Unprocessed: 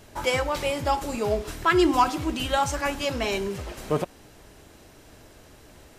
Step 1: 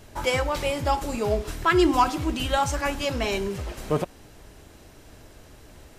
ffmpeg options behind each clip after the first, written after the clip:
-af "lowshelf=f=97:g=6"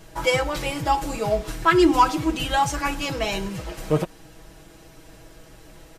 -af "aecho=1:1:6.2:0.78"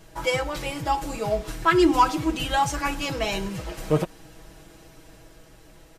-af "dynaudnorm=f=290:g=9:m=3.5dB,volume=-3.5dB"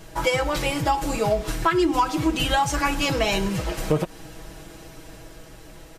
-af "acompressor=threshold=-24dB:ratio=6,volume=6.5dB"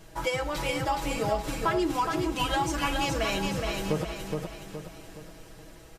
-af "aecho=1:1:419|838|1257|1676|2095:0.631|0.271|0.117|0.0502|0.0216,volume=-7dB"

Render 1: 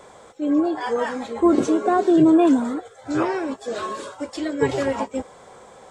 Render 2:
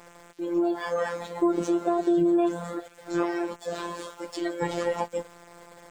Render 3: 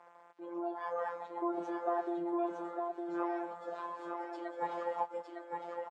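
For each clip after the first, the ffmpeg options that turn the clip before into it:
-af "afftfilt=real='hypot(re,im)*cos(PI*b)':imag='0':win_size=1024:overlap=0.75,acompressor=threshold=-21dB:ratio=3,aeval=exprs='val(0)*gte(abs(val(0)),0.00335)':c=same"
-filter_complex "[0:a]bandpass=f=890:t=q:w=1.9:csg=0,asplit=2[a][b];[b]aecho=0:1:908:0.631[c];[a][c]amix=inputs=2:normalize=0,volume=-3dB"

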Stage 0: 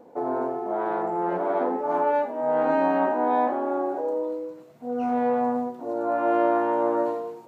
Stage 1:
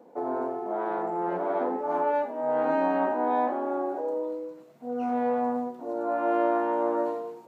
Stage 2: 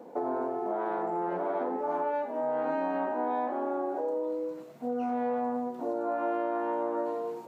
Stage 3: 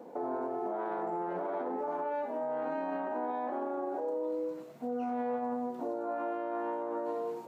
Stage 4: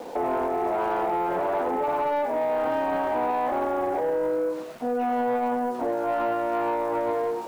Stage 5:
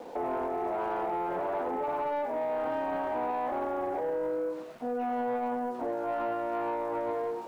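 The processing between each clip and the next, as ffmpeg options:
-af "highpass=f=140:w=0.5412,highpass=f=140:w=1.3066,volume=-3dB"
-af "acompressor=threshold=-35dB:ratio=4,volume=5.5dB"
-af "alimiter=level_in=2.5dB:limit=-24dB:level=0:latency=1:release=33,volume=-2.5dB,volume=-1dB"
-filter_complex "[0:a]asplit=2[a][b];[b]highpass=f=720:p=1,volume=12dB,asoftclip=type=tanh:threshold=-27dB[c];[a][c]amix=inputs=2:normalize=0,lowpass=f=2.3k:p=1,volume=-6dB,aeval=exprs='val(0)*gte(abs(val(0)),0.00251)':c=same,volume=8.5dB"
-af "highshelf=f=4.6k:g=-6,volume=-6dB"

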